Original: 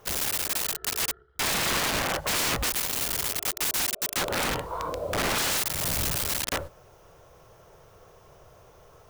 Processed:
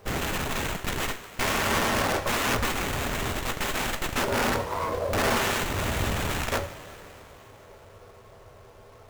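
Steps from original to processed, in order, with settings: send-on-delta sampling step -55 dBFS; two-slope reverb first 0.2 s, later 3.8 s, from -20 dB, DRR 2.5 dB; sliding maximum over 9 samples; trim +1.5 dB

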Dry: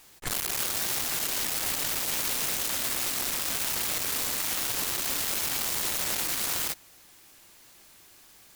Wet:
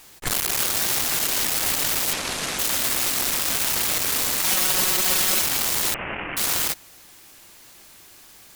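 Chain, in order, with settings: 2.13–2.59 s: CVSD coder 64 kbps; 4.44–5.42 s: comb 5.4 ms, depth 90%; 5.94–6.37 s: steep low-pass 2.9 kHz 96 dB/octave; trim +6.5 dB

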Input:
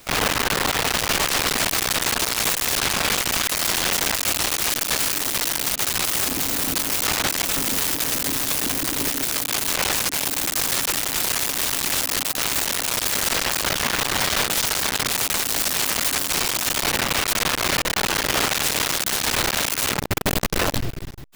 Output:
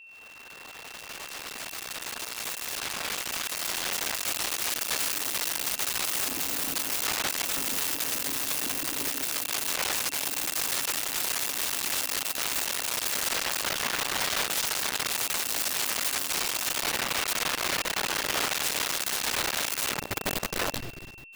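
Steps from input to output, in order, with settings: fade-in on the opening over 5.04 s; bass shelf 250 Hz -8.5 dB; pre-echo 194 ms -20 dB; whistle 2.7 kHz -40 dBFS; trim -6.5 dB

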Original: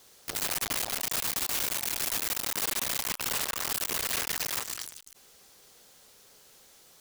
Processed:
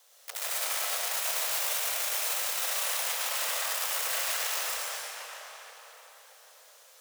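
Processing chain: steep high-pass 480 Hz 72 dB/octave; peaking EQ 4.6 kHz -2.5 dB 0.3 oct; tape echo 632 ms, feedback 41%, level -5 dB, low-pass 2.3 kHz; algorithmic reverb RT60 1.8 s, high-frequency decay 0.95×, pre-delay 65 ms, DRR -4.5 dB; trim -4.5 dB

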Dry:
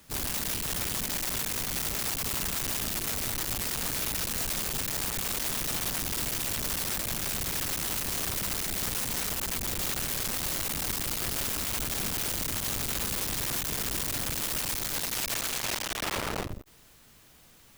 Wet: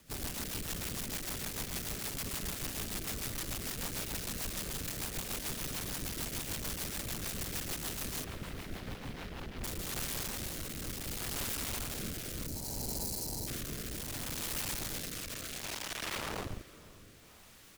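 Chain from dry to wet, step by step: in parallel at -10.5 dB: sine folder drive 9 dB, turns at -21 dBFS; 8.24–9.64 s: on the sum: distance through air 280 m; 12.46–13.47 s: time-frequency box 1–3.9 kHz -17 dB; on a send: echo that smears into a reverb 520 ms, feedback 54%, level -16 dB; on the sum: rotary cabinet horn 6.7 Hz, later 0.65 Hz, at 9.13 s; speakerphone echo 140 ms, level -13 dB; trim -8 dB

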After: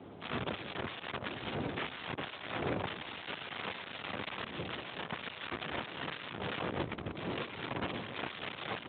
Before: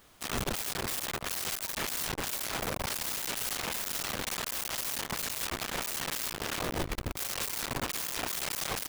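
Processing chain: wind noise 470 Hz -43 dBFS; trim -2 dB; Speex 18 kbps 8 kHz

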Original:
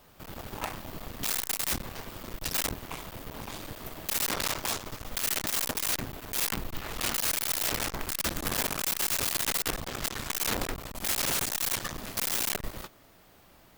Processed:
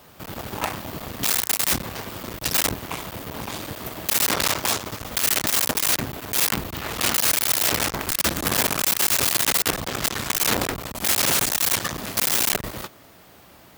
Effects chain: high-pass 66 Hz; trim +8.5 dB

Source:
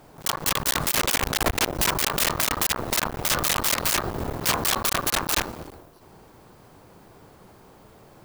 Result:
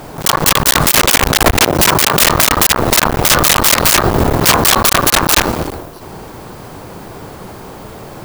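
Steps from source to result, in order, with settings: 1.63–2.22 s: high-pass 80 Hz; loudness maximiser +20.5 dB; trim -1 dB

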